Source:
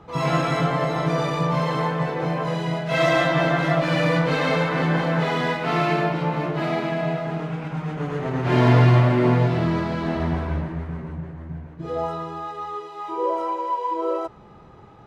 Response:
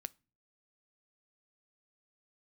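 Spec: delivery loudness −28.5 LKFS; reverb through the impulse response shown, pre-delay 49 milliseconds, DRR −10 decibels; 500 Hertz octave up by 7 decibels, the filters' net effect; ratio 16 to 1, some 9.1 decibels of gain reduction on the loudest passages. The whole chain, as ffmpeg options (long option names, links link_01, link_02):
-filter_complex "[0:a]equalizer=frequency=500:width_type=o:gain=9,acompressor=threshold=-18dB:ratio=16,asplit=2[link_01][link_02];[1:a]atrim=start_sample=2205,adelay=49[link_03];[link_02][link_03]afir=irnorm=-1:irlink=0,volume=13.5dB[link_04];[link_01][link_04]amix=inputs=2:normalize=0,volume=-15.5dB"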